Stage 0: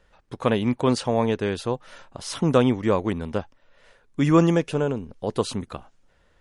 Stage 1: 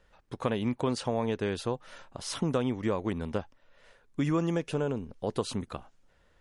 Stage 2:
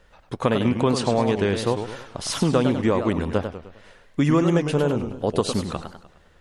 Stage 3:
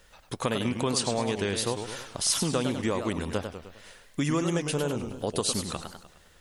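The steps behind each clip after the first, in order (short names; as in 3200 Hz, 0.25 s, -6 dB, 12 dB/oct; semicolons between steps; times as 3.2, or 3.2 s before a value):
compressor 4:1, threshold -22 dBFS, peak gain reduction 9 dB; gain -3.5 dB
warbling echo 0.102 s, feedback 45%, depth 205 cents, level -8 dB; gain +8.5 dB
pre-emphasis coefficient 0.8; in parallel at +2 dB: compressor, threshold -41 dBFS, peak gain reduction 14 dB; on the sum: gain +3 dB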